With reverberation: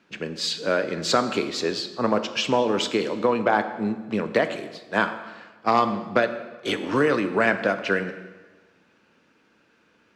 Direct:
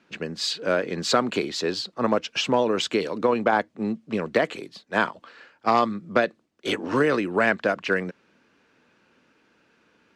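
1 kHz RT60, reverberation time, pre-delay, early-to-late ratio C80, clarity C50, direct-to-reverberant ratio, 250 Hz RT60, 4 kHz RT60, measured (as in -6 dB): 1.3 s, 1.3 s, 9 ms, 12.5 dB, 11.0 dB, 9.0 dB, 1.5 s, 1.1 s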